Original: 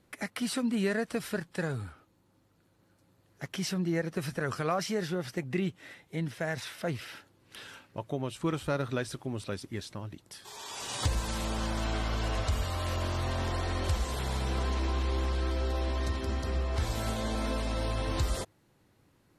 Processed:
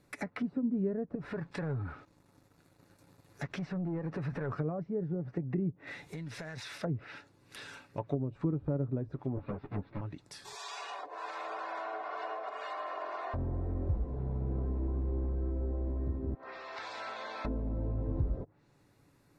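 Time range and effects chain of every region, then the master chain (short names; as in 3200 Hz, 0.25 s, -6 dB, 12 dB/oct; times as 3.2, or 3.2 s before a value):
1.15–4.53 compressor 2.5:1, threshold -41 dBFS + sample leveller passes 2
5.87–6.78 G.711 law mismatch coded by mu + high shelf 8000 Hz +8 dB + compressor 10:1, threshold -39 dBFS
9.36–10.01 half-waves squared off + air absorption 410 m + ensemble effect
10.55–13.34 HPF 530 Hz 24 dB/oct + comb 2.8 ms, depth 54%
16.34–17.45 HPF 800 Hz + air absorption 95 m
whole clip: notch 3100 Hz, Q 6.8; treble ducked by the level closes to 380 Hz, closed at -29.5 dBFS; comb 7 ms, depth 30%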